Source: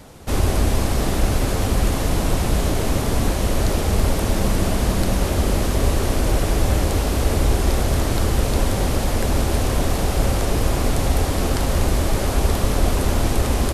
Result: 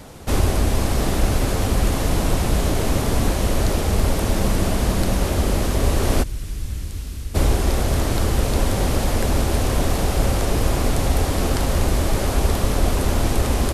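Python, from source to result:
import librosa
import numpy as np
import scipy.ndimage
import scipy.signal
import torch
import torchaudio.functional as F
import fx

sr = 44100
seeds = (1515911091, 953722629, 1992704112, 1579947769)

y = fx.tone_stack(x, sr, knobs='6-0-2', at=(6.22, 7.34), fade=0.02)
y = fx.rider(y, sr, range_db=4, speed_s=0.5)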